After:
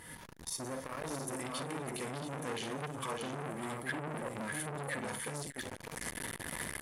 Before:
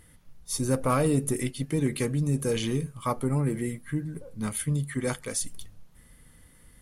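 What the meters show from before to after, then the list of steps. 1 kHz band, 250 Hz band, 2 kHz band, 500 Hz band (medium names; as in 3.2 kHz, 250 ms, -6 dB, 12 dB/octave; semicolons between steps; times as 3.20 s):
-5.5 dB, -13.0 dB, 0.0 dB, -10.0 dB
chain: recorder AGC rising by 56 dB/s; high-pass 270 Hz 6 dB/octave; treble shelf 11 kHz -7 dB; reverse; compression 6:1, threshold -39 dBFS, peak gain reduction 16.5 dB; reverse; peak limiter -34 dBFS, peak gain reduction 11 dB; small resonant body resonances 950/1700 Hz, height 11 dB; on a send: multi-tap echo 43/50/296/605/673 ms -19.5/-10/-18.5/-5/-6.5 dB; on the sum: transformer saturation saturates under 1.7 kHz; trim +6.5 dB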